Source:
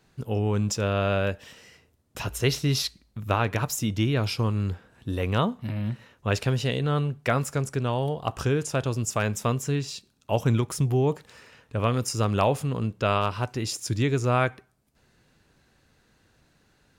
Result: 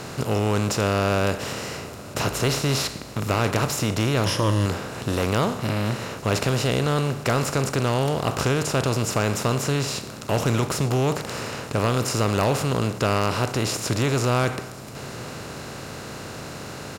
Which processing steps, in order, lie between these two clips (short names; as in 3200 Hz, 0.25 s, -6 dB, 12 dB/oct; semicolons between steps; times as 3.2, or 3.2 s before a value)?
per-bin compression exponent 0.4; 4.25–4.66 ripple EQ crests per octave 1.2, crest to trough 10 dB; hard clip -11.5 dBFS, distortion -19 dB; on a send: echo 0.921 s -23 dB; on the sum: gain -2.5 dB